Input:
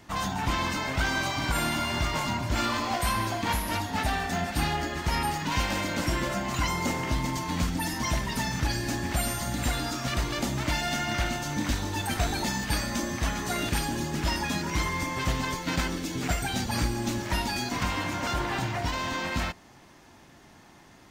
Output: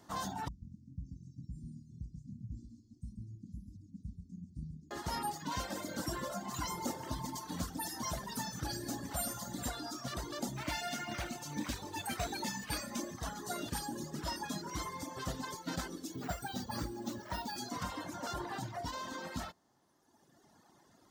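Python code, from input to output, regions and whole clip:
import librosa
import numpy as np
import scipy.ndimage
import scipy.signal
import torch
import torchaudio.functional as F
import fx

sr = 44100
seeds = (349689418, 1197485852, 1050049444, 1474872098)

y = fx.chain(x, sr, fx.cheby2_bandstop(low_hz=560.0, high_hz=2600.0, order=4, stop_db=60),
    fx.spacing_loss(db_at_10k=36),
    fx.echo_single(ms=136, db=-5.0), at=(0.48, 4.91))
y = fx.chain(y, sr, fx.high_shelf(hz=11000.0, db=5.0),
    fx.echo_split(split_hz=2500.0, low_ms=101, high_ms=168, feedback_pct=52, wet_db=-11.0), at=(5.76, 9.69))
y = fx.chain(y, sr, fx.peak_eq(hz=2400.0, db=12.0, octaves=0.48),
    fx.quant_float(bits=4), at=(10.56, 13.14))
y = fx.chain(y, sr, fx.high_shelf(hz=7900.0, db=-9.0),
    fx.resample_bad(factor=2, down='filtered', up='hold'), at=(16.13, 17.58))
y = fx.dereverb_blind(y, sr, rt60_s=1.8)
y = fx.highpass(y, sr, hz=160.0, slope=6)
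y = fx.peak_eq(y, sr, hz=2400.0, db=-13.5, octaves=0.74)
y = y * librosa.db_to_amplitude(-5.5)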